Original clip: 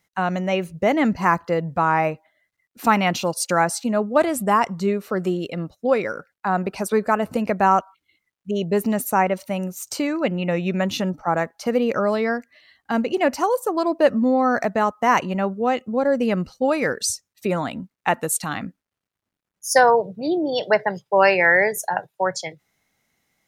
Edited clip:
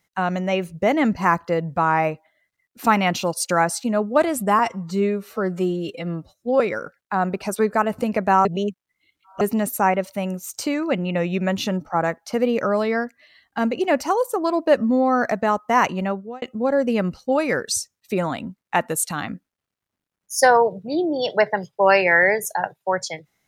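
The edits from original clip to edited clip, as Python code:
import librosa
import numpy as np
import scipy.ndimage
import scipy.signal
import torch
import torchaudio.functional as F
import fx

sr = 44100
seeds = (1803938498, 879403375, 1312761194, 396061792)

y = fx.edit(x, sr, fx.stretch_span(start_s=4.59, length_s=1.34, factor=1.5),
    fx.reverse_span(start_s=7.78, length_s=0.96),
    fx.fade_out_span(start_s=15.36, length_s=0.39), tone=tone)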